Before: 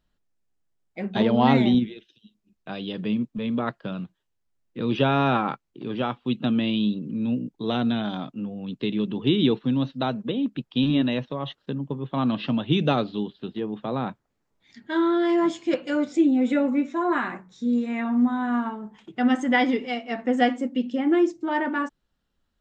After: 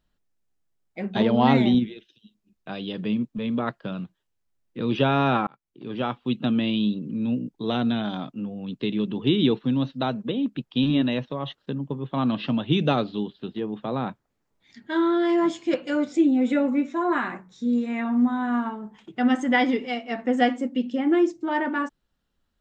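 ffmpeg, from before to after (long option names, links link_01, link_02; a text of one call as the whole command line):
ffmpeg -i in.wav -filter_complex "[0:a]asplit=2[link_01][link_02];[link_01]atrim=end=5.47,asetpts=PTS-STARTPTS,afade=type=out:start_time=5.466:duration=0.004:curve=hsin[link_03];[link_02]atrim=start=5.47,asetpts=PTS-STARTPTS,afade=type=in:duration=0.6[link_04];[link_03][link_04]concat=n=2:v=0:a=1" out.wav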